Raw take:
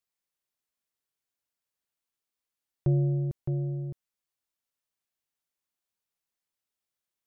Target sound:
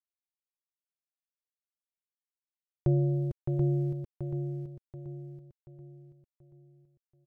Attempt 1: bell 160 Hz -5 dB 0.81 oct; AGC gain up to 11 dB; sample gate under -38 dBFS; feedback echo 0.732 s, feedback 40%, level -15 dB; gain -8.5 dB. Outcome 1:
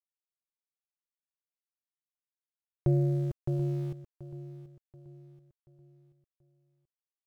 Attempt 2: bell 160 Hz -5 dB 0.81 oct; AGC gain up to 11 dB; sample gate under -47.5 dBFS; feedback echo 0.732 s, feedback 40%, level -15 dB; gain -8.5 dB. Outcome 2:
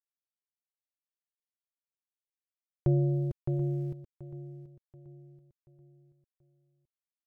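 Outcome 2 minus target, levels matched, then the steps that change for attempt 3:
echo-to-direct -9.5 dB
change: feedback echo 0.732 s, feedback 40%, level -5.5 dB

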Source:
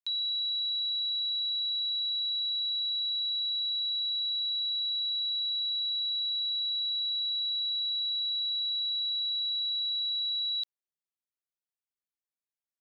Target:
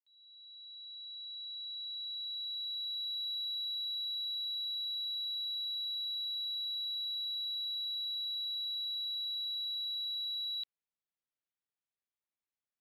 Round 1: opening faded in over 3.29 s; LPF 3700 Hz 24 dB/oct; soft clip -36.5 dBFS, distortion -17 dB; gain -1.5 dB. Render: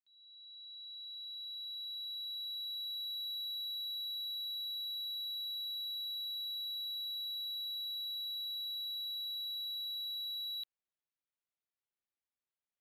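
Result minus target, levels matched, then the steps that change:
soft clip: distortion +13 dB
change: soft clip -28.5 dBFS, distortion -29 dB

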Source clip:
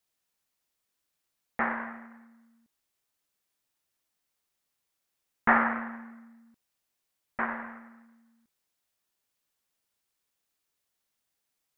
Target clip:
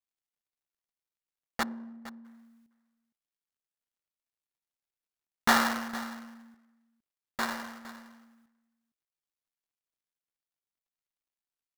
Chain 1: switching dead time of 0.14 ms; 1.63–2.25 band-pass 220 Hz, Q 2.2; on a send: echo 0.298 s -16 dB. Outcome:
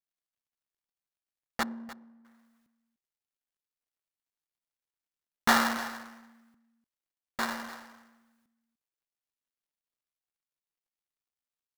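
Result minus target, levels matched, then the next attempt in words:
echo 0.163 s early
switching dead time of 0.14 ms; 1.63–2.25 band-pass 220 Hz, Q 2.2; on a send: echo 0.461 s -16 dB

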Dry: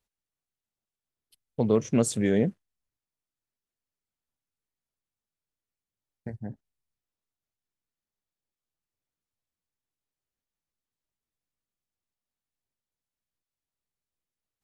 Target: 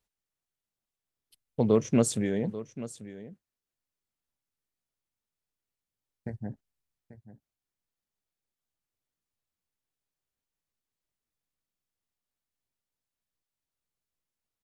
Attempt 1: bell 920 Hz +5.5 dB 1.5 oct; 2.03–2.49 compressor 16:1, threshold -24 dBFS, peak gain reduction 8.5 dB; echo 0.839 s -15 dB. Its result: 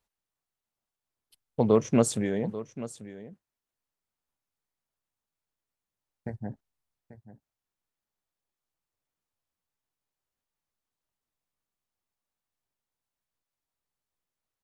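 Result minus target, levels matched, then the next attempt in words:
1000 Hz band +4.0 dB
2.03–2.49 compressor 16:1, threshold -24 dBFS, peak gain reduction 7.5 dB; echo 0.839 s -15 dB

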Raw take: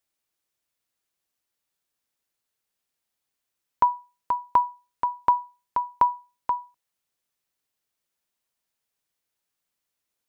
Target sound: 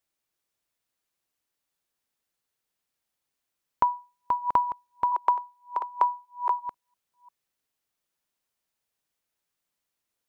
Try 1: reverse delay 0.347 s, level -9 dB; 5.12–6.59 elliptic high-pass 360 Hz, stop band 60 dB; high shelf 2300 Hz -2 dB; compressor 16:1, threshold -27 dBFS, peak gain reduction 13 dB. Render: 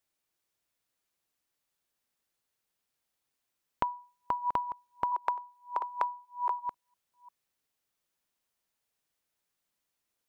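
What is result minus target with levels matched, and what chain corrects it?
compressor: peak gain reduction +9.5 dB
reverse delay 0.347 s, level -9 dB; 5.12–6.59 elliptic high-pass 360 Hz, stop band 60 dB; high shelf 2300 Hz -2 dB; compressor 16:1, threshold -17 dBFS, peak gain reduction 3.5 dB

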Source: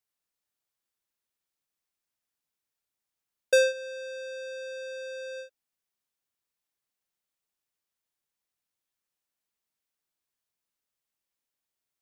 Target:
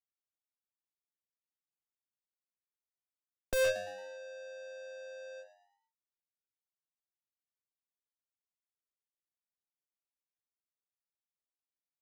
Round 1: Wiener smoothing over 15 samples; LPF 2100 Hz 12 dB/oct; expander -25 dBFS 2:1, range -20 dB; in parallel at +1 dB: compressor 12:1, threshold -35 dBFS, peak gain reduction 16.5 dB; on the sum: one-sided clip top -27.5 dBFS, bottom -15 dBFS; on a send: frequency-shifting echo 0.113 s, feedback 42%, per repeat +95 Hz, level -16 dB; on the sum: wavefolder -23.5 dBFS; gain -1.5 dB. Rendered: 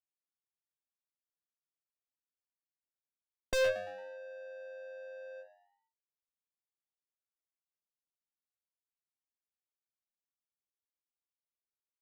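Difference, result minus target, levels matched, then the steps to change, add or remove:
8000 Hz band -3.0 dB
change: LPF 6600 Hz 12 dB/oct

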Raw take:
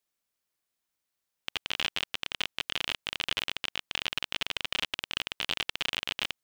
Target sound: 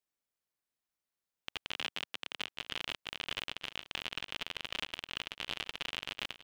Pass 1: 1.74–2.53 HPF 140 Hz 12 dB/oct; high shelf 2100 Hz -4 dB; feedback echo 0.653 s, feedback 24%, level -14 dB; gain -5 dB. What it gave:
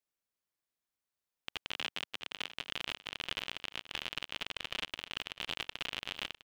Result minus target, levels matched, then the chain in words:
echo 0.26 s early
1.74–2.53 HPF 140 Hz 12 dB/oct; high shelf 2100 Hz -4 dB; feedback echo 0.913 s, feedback 24%, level -14 dB; gain -5 dB

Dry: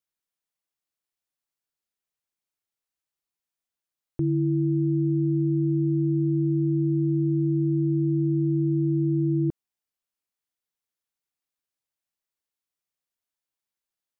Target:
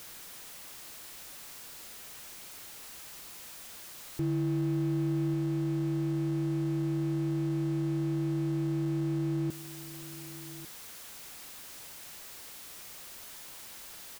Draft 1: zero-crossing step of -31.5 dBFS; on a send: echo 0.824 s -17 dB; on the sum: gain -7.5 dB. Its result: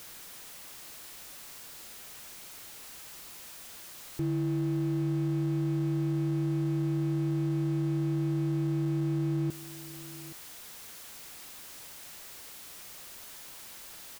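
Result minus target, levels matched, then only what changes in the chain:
echo 0.324 s early
change: echo 1.148 s -17 dB

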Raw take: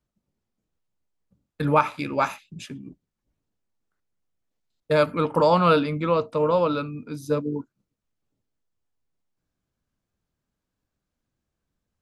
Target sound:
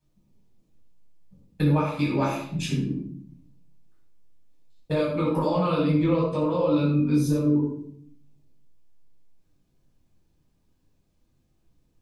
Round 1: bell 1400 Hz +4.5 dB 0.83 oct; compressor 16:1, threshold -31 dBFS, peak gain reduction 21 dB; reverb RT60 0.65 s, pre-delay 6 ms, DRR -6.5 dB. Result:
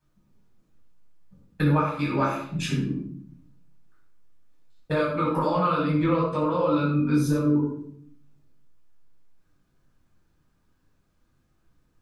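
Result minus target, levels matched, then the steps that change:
1000 Hz band +4.5 dB
change: bell 1400 Hz -7.5 dB 0.83 oct

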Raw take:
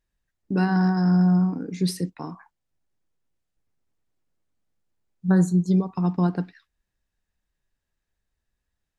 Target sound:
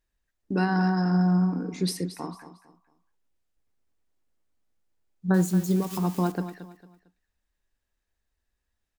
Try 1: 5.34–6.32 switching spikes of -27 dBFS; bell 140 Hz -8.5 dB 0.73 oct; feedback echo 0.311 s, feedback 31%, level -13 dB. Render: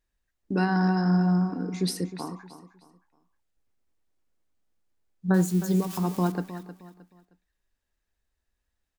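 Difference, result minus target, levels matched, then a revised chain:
echo 85 ms late
5.34–6.32 switching spikes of -27 dBFS; bell 140 Hz -8.5 dB 0.73 oct; feedback echo 0.226 s, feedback 31%, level -13 dB

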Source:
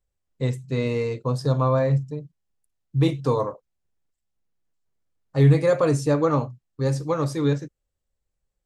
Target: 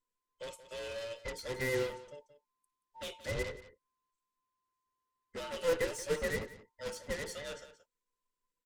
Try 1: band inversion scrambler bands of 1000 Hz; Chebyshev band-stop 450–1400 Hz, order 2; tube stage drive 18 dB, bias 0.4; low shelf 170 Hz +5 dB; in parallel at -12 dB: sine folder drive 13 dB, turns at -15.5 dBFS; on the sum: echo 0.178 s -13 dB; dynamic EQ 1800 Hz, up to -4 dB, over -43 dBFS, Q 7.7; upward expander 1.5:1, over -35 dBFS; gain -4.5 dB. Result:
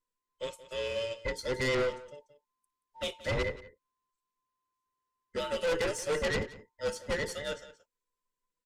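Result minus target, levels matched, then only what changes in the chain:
sine folder: distortion -11 dB
change: sine folder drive 13 dB, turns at -23.5 dBFS

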